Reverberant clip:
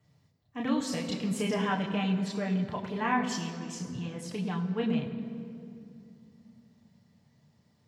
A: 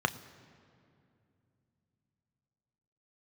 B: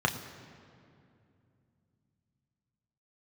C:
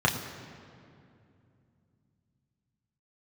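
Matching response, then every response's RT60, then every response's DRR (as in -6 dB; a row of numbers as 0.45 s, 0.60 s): C; 2.6 s, 2.6 s, 2.6 s; 9.5 dB, 2.5 dB, -1.5 dB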